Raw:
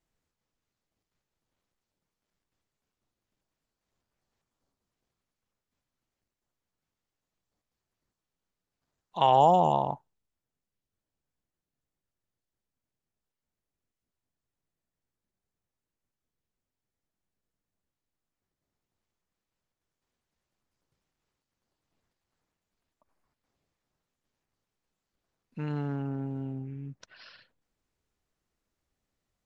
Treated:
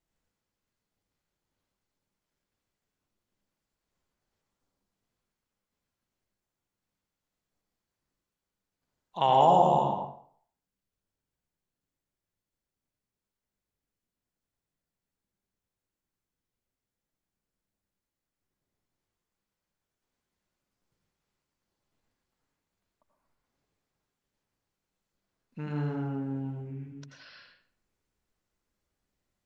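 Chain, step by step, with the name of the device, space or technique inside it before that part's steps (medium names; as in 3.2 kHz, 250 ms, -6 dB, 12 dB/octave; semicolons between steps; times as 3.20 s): bathroom (reverberation RT60 0.55 s, pre-delay 80 ms, DRR 0.5 dB); trim -2.5 dB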